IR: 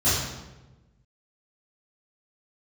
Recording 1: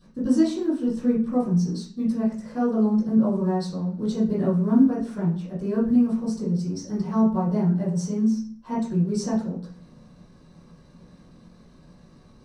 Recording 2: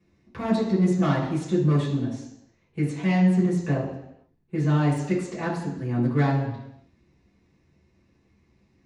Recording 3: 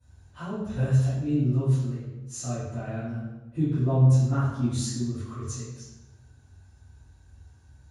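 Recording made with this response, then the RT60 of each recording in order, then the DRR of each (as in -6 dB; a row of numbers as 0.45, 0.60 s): 3; 0.45, 0.80, 1.1 s; -11.0, -7.5, -15.5 dB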